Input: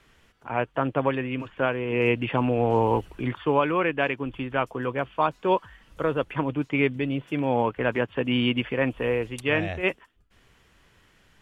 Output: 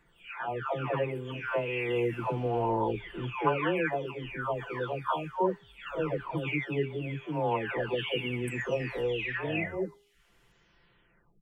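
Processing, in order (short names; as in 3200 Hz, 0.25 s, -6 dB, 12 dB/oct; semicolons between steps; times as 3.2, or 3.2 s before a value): spectral delay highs early, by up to 0.905 s; de-hum 406.8 Hz, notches 15; gain -3 dB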